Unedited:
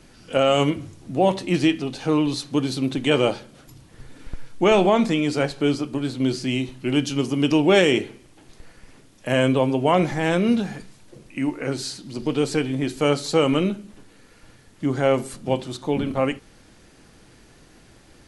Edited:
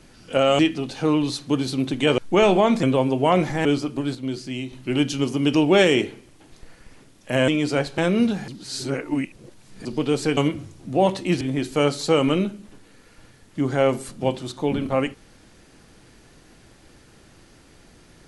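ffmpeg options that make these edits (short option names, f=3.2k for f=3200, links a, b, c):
-filter_complex "[0:a]asplit=13[a][b][c][d][e][f][g][h][i][j][k][l][m];[a]atrim=end=0.592[n];[b]atrim=start=1.628:end=3.222[o];[c]atrim=start=4.468:end=5.122[p];[d]atrim=start=9.448:end=10.272[q];[e]atrim=start=5.618:end=6.122[r];[f]atrim=start=6.118:end=6.702,asetpts=PTS-STARTPTS,volume=-6dB[s];[g]atrim=start=6.698:end=9.452[t];[h]atrim=start=5.118:end=5.622[u];[i]atrim=start=10.268:end=10.772[v];[j]atrim=start=10.768:end=12.142,asetpts=PTS-STARTPTS,areverse[w];[k]atrim=start=12.138:end=12.662[x];[l]atrim=start=0.588:end=1.632[y];[m]atrim=start=12.658[z];[n][o]acrossfade=d=0.004:c1=hsin:c2=hsin[aa];[aa][p]acrossfade=d=0.004:c1=hsin:c2=hsin[ab];[ab][q]acrossfade=d=0.004:c1=hsin:c2=hsin[ac];[ac][r]acrossfade=d=0.004:c1=hsin:c2=hsin[ad];[ad][s]acrossfade=d=0.004:c1=hsin:c2=hsin[ae];[ae][t]acrossfade=d=0.004:c1=hsin:c2=hsin[af];[af][u]acrossfade=d=0.004:c1=hsin:c2=hsin[ag];[ag][v]acrossfade=d=0.004:c1=hsin:c2=hsin[ah];[ah][w]acrossfade=d=0.004:c1=hsin:c2=hsin[ai];[ai][x]acrossfade=d=0.004:c1=hsin:c2=hsin[aj];[aj][y]acrossfade=d=0.004:c1=hsin:c2=hsin[ak];[ak][z]acrossfade=d=0.004:c1=hsin:c2=hsin"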